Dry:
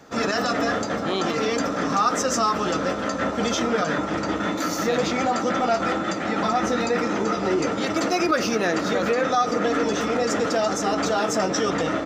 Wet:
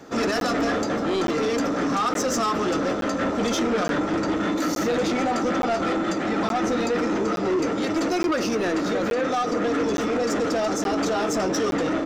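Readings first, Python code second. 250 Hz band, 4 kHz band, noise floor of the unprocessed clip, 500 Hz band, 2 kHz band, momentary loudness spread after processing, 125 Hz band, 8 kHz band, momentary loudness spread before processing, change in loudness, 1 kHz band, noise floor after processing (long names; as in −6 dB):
+1.5 dB, −2.5 dB, −28 dBFS, −0.5 dB, −2.5 dB, 1 LU, −1.0 dB, −2.5 dB, 4 LU, −0.5 dB, −2.5 dB, −26 dBFS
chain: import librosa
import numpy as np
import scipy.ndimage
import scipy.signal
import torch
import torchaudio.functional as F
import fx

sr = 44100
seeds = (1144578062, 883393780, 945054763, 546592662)

y = fx.peak_eq(x, sr, hz=330.0, db=6.5, octaves=1.0)
y = fx.rider(y, sr, range_db=10, speed_s=2.0)
y = 10.0 ** (-18.5 / 20.0) * np.tanh(y / 10.0 ** (-18.5 / 20.0))
y = fx.buffer_crackle(y, sr, first_s=0.4, period_s=0.87, block=512, kind='zero')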